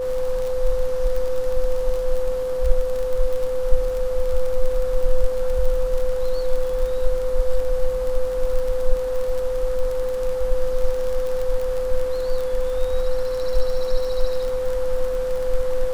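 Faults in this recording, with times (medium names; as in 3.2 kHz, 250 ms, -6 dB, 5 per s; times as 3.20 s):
crackle 35 per s -25 dBFS
whine 510 Hz -22 dBFS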